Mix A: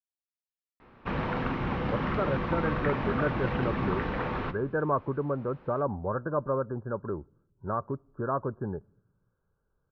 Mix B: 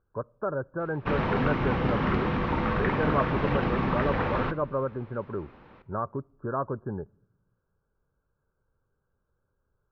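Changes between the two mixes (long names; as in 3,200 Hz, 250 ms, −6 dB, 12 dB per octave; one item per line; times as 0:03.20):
speech: entry −1.75 s
background +3.5 dB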